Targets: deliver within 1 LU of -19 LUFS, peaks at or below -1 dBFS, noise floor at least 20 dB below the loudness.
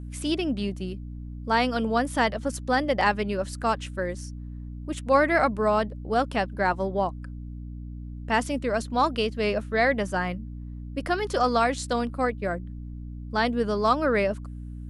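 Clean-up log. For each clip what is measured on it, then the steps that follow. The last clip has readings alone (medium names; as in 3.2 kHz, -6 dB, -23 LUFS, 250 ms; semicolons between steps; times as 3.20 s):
hum 60 Hz; highest harmonic 300 Hz; hum level -35 dBFS; loudness -26.0 LUFS; peak level -9.0 dBFS; loudness target -19.0 LUFS
-> hum notches 60/120/180/240/300 Hz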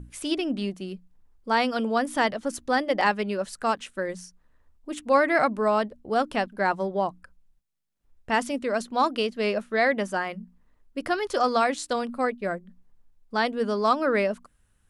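hum not found; loudness -26.0 LUFS; peak level -9.5 dBFS; loudness target -19.0 LUFS
-> trim +7 dB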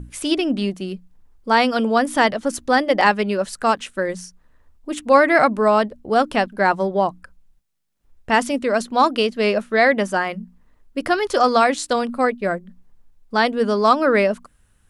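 loudness -19.0 LUFS; peak level -2.5 dBFS; noise floor -58 dBFS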